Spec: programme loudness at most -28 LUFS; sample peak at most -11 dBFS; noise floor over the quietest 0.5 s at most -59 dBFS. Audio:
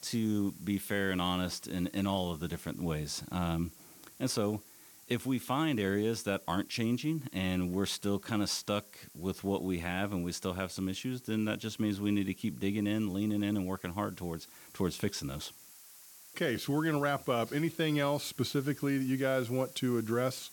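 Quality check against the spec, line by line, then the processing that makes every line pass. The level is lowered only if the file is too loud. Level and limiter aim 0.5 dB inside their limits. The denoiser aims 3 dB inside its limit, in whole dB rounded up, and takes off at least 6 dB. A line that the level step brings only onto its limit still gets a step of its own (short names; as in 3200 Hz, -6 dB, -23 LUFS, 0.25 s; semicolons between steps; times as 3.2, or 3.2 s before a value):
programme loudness -33.5 LUFS: OK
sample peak -18.5 dBFS: OK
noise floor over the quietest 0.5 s -56 dBFS: fail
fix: denoiser 6 dB, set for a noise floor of -56 dBFS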